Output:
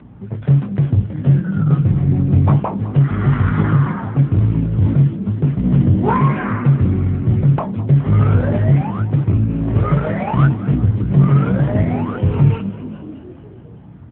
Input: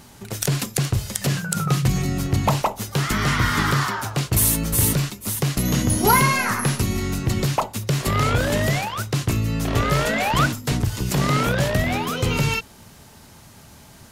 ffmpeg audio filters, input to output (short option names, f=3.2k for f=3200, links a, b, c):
-filter_complex "[0:a]lowpass=1.3k,aemphasis=mode=reproduction:type=bsi,flanger=delay=19:depth=3:speed=1.1,aeval=exprs='val(0)+0.00794*(sin(2*PI*60*n/s)+sin(2*PI*2*60*n/s)/2+sin(2*PI*3*60*n/s)/3+sin(2*PI*4*60*n/s)/4+sin(2*PI*5*60*n/s)/5)':c=same,asoftclip=type=hard:threshold=-7dB,asplit=7[a][b][c][d][e][f][g];[b]adelay=207,afreqshift=55,volume=-15.5dB[h];[c]adelay=414,afreqshift=110,volume=-19.8dB[i];[d]adelay=621,afreqshift=165,volume=-24.1dB[j];[e]adelay=828,afreqshift=220,volume=-28.4dB[k];[f]adelay=1035,afreqshift=275,volume=-32.7dB[l];[g]adelay=1242,afreqshift=330,volume=-37dB[m];[a][h][i][j][k][l][m]amix=inputs=7:normalize=0,crystalizer=i=3.5:c=0,aeval=exprs='0.596*(cos(1*acos(clip(val(0)/0.596,-1,1)))-cos(1*PI/2))+0.0188*(cos(2*acos(clip(val(0)/0.596,-1,1)))-cos(2*PI/2))+0.0422*(cos(4*acos(clip(val(0)/0.596,-1,1)))-cos(4*PI/2))+0.0119*(cos(5*acos(clip(val(0)/0.596,-1,1)))-cos(5*PI/2))+0.0376*(cos(6*acos(clip(val(0)/0.596,-1,1)))-cos(6*PI/2))':c=same,volume=3dB" -ar 8000 -c:a libopencore_amrnb -b:a 7950